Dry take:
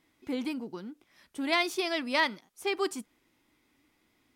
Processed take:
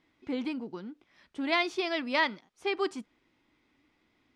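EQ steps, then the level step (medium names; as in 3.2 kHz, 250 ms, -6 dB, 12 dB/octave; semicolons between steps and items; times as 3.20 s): low-pass 4.4 kHz 12 dB/octave; 0.0 dB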